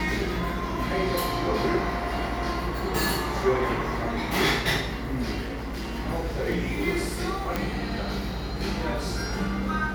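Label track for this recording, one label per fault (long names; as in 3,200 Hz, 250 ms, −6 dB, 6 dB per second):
5.410000	5.970000	clipping −29 dBFS
7.560000	7.560000	click −12 dBFS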